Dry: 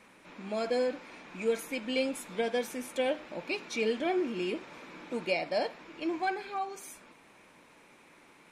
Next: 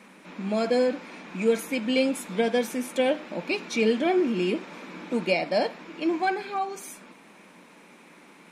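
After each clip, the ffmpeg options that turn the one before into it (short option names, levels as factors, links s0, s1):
-af "lowshelf=f=140:t=q:w=3:g=-9.5,volume=1.88"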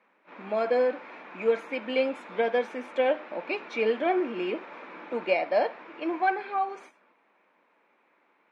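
-af "aeval=exprs='0.282*(cos(1*acos(clip(val(0)/0.282,-1,1)))-cos(1*PI/2))+0.0126*(cos(3*acos(clip(val(0)/0.282,-1,1)))-cos(3*PI/2))':c=same,highpass=480,lowpass=2000,agate=range=0.224:threshold=0.00316:ratio=16:detection=peak,volume=1.41"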